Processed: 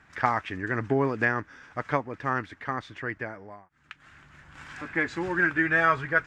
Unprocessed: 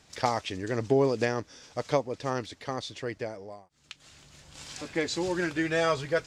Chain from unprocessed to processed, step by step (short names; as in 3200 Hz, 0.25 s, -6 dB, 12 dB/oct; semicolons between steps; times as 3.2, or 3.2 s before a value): EQ curve 320 Hz 0 dB, 510 Hz -7 dB, 1600 Hz +11 dB, 4300 Hz -15 dB; gain +1 dB